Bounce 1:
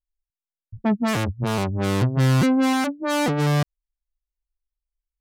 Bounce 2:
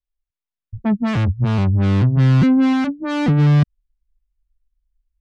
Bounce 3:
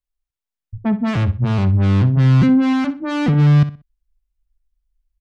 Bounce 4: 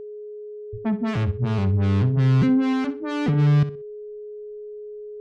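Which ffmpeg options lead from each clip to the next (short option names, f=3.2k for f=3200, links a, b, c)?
-filter_complex "[0:a]lowpass=3.8k,asubboost=boost=7.5:cutoff=210,acrossover=split=200|1800|2500[a][b][c][d];[a]alimiter=limit=-12.5dB:level=0:latency=1[e];[e][b][c][d]amix=inputs=4:normalize=0"
-filter_complex "[0:a]asplit=2[a][b];[b]adelay=62,lowpass=f=4.6k:p=1,volume=-13dB,asplit=2[c][d];[d]adelay=62,lowpass=f=4.6k:p=1,volume=0.28,asplit=2[e][f];[f]adelay=62,lowpass=f=4.6k:p=1,volume=0.28[g];[a][c][e][g]amix=inputs=4:normalize=0"
-af "aeval=exprs='val(0)+0.0398*sin(2*PI*420*n/s)':c=same,volume=-5.5dB"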